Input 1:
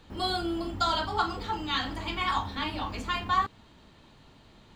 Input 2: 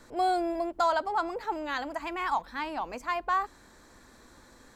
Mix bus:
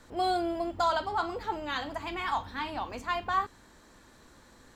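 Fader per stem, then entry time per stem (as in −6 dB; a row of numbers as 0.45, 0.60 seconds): −9.0, −2.0 decibels; 0.00, 0.00 seconds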